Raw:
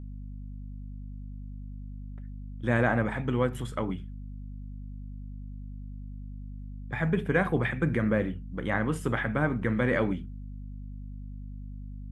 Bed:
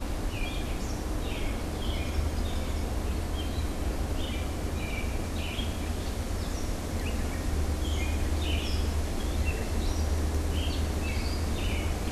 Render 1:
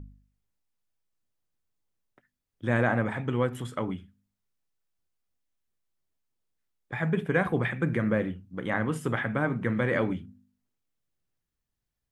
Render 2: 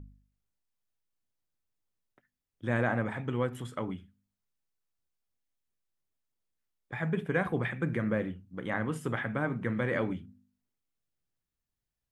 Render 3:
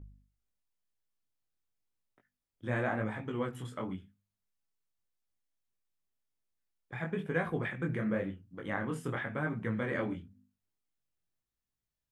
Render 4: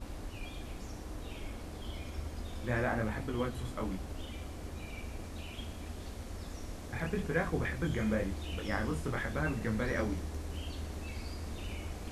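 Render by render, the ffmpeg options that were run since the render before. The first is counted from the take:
-af "bandreject=f=50:t=h:w=4,bandreject=f=100:t=h:w=4,bandreject=f=150:t=h:w=4,bandreject=f=200:t=h:w=4,bandreject=f=250:t=h:w=4"
-af "volume=-4dB"
-af "flanger=delay=18:depth=5.9:speed=0.94"
-filter_complex "[1:a]volume=-11dB[a];[0:a][a]amix=inputs=2:normalize=0"

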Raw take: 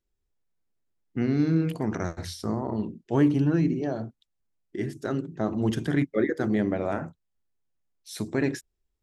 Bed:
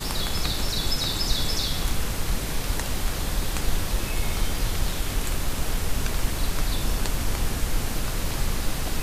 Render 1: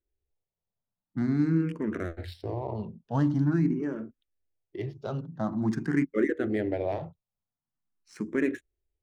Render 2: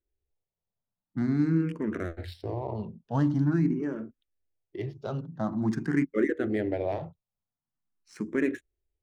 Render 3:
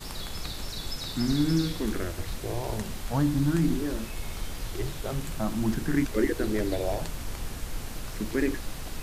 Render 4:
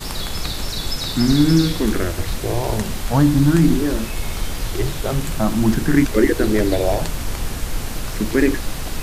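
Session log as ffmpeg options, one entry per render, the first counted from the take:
-filter_complex "[0:a]adynamicsmooth=sensitivity=8:basefreq=2.2k,asplit=2[a][b];[b]afreqshift=0.46[c];[a][c]amix=inputs=2:normalize=1"
-af anull
-filter_complex "[1:a]volume=-9.5dB[a];[0:a][a]amix=inputs=2:normalize=0"
-af "volume=10.5dB,alimiter=limit=-3dB:level=0:latency=1"

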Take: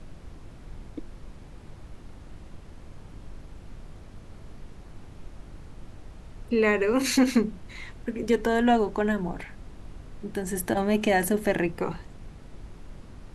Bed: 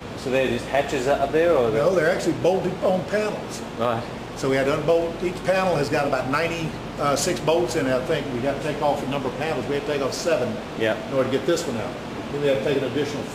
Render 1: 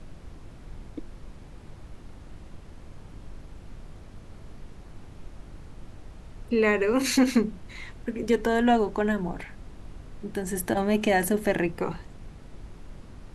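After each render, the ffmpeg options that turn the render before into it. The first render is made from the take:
-af anull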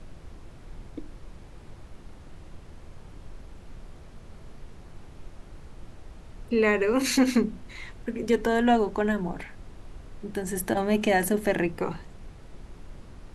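-af "bandreject=f=50:t=h:w=4,bandreject=f=100:t=h:w=4,bandreject=f=150:t=h:w=4,bandreject=f=200:t=h:w=4,bandreject=f=250:t=h:w=4,bandreject=f=300:t=h:w=4"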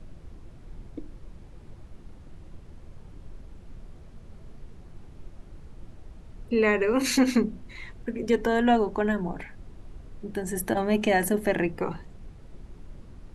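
-af "afftdn=nr=6:nf=-47"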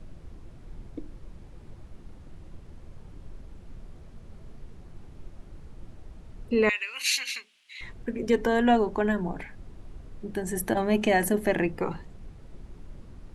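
-filter_complex "[0:a]asettb=1/sr,asplit=3[a][b][c];[a]atrim=end=6.694[d];[b]atrim=start=6.69:end=7.81,asetpts=PTS-STARTPTS,afade=t=in:d=0.004:c=qsin,afade=t=out:st=1.116:d=0.004:c=qsin,highpass=f=2.8k:t=q:w=2.5[e];[c]atrim=start=7.806[f];[d][e]acrossfade=d=0.004:c1=hsin:c2=qsin[g];[g][f]acrossfade=d=0.004:c1=qsin:c2=hsin"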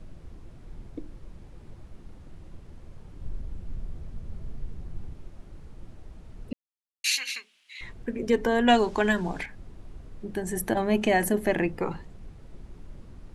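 -filter_complex "[0:a]asettb=1/sr,asplit=3[a][b][c];[a]atrim=end=3.214[d];[b]atrim=start=3.21:end=5.14,asetpts=PTS-STARTPTS,afade=t=in:d=0.004:c=qsin,afade=t=out:st=1.926:d=0.004:c=qsin,lowshelf=f=190:g=9.5[e];[c]atrim=start=5.136[f];[d][e]acrossfade=d=0.004:c1=hsin:c2=qsin[g];[g][f]acrossfade=d=0.004:c1=qsin:c2=hsin,asettb=1/sr,asplit=3[h][i][j];[h]atrim=end=8.684[k];[i]atrim=start=8.68:end=9.46,asetpts=PTS-STARTPTS,afade=t=in:d=0.004:c=qsin,afade=t=out:st=0.776:d=0.004:c=qsin,equalizer=f=5.3k:t=o:w=2.9:g=13.5[l];[j]atrim=start=9.456[m];[k][l]acrossfade=d=0.004:c1=hsin:c2=qsin[n];[n][m]acrossfade=d=0.004:c1=qsin:c2=hsin,asplit=3[o][p][q];[o]atrim=end=6.53,asetpts=PTS-STARTPTS,afade=t=out:st=6.526:d=0.004:c=hsin[r];[p]atrim=start=6.53:end=7.04,asetpts=PTS-STARTPTS,volume=0[s];[q]atrim=start=7.04,asetpts=PTS-STARTPTS,afade=t=in:d=0.004:c=hsin[t];[r][s][t]concat=n=3:v=0:a=1"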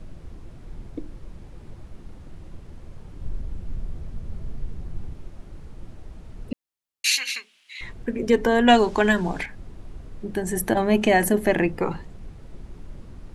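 -af "volume=4.5dB"

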